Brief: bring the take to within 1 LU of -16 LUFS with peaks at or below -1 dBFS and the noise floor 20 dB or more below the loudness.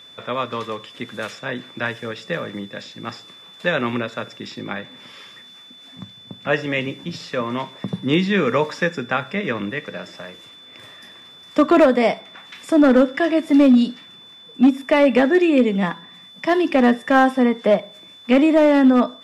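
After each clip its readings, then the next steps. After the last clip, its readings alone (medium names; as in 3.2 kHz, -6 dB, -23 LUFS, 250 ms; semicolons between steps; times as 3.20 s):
clipped samples 1.1%; clipping level -7.5 dBFS; steady tone 3.5 kHz; tone level -42 dBFS; loudness -19.0 LUFS; peak level -7.5 dBFS; loudness target -16.0 LUFS
-> clip repair -7.5 dBFS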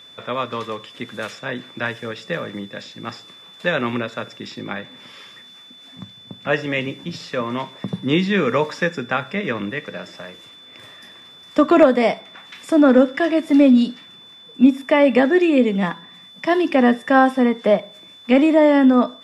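clipped samples 0.0%; steady tone 3.5 kHz; tone level -42 dBFS
-> band-stop 3.5 kHz, Q 30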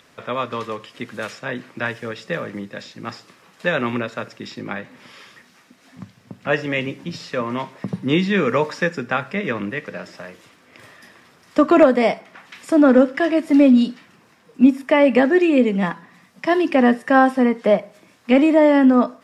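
steady tone not found; loudness -18.5 LUFS; peak level -1.5 dBFS; loudness target -16.0 LUFS
-> trim +2.5 dB; peak limiter -1 dBFS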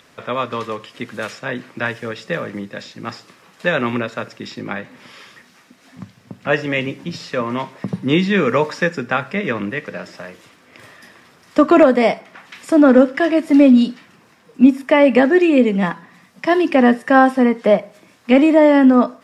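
loudness -16.0 LUFS; peak level -1.0 dBFS; noise floor -52 dBFS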